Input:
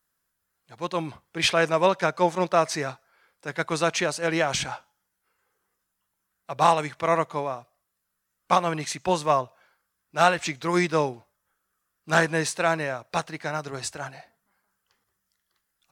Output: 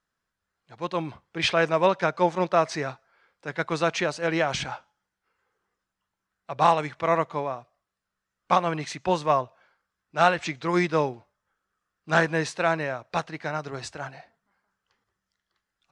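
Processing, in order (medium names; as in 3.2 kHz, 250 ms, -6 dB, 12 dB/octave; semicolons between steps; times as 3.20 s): distance through air 96 m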